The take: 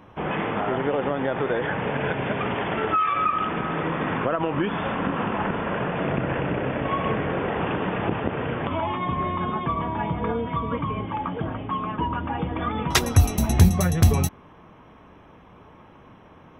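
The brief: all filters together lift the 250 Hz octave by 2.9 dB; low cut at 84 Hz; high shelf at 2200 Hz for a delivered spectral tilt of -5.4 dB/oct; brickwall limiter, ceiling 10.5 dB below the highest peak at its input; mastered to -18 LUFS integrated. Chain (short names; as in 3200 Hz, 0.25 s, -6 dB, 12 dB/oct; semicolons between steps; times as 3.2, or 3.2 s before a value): HPF 84 Hz; bell 250 Hz +4 dB; high shelf 2200 Hz +6 dB; gain +6.5 dB; limiter -6.5 dBFS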